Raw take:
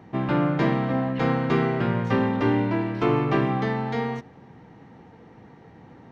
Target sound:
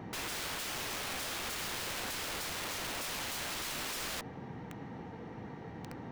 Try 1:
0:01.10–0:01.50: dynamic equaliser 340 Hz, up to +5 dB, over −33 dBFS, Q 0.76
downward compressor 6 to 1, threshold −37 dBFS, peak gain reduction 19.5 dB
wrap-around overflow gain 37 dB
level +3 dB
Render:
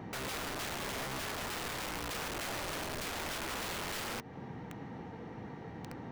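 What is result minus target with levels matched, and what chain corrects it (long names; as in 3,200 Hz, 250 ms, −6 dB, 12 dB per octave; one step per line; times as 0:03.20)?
downward compressor: peak gain reduction +6.5 dB
0:01.10–0:01.50: dynamic equaliser 340 Hz, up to +5 dB, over −33 dBFS, Q 0.76
downward compressor 6 to 1, threshold −29 dBFS, peak gain reduction 13 dB
wrap-around overflow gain 37 dB
level +3 dB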